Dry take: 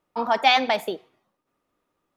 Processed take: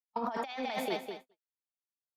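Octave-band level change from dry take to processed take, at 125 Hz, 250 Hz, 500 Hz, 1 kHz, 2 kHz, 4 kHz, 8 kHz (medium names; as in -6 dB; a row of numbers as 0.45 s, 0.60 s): -3.0 dB, -6.5 dB, -10.0 dB, -14.5 dB, -16.5 dB, -18.5 dB, -8.5 dB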